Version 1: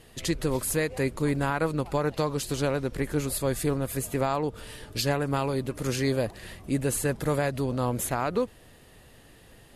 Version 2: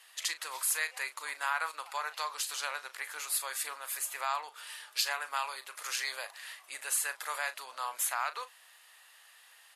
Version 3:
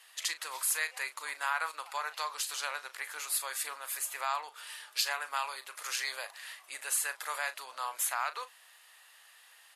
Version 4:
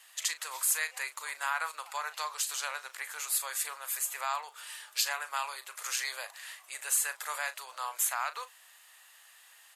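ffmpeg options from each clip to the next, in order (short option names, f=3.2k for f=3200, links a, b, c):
-filter_complex "[0:a]highpass=f=980:w=0.5412,highpass=f=980:w=1.3066,asplit=2[a][b];[b]adelay=38,volume=-12.5dB[c];[a][c]amix=inputs=2:normalize=0"
-af "bandreject=f=60:t=h:w=6,bandreject=f=120:t=h:w=6,bandreject=f=180:t=h:w=6,bandreject=f=240:t=h:w=6"
-af "aexciter=amount=2.1:drive=1.7:freq=6.5k,highpass=420"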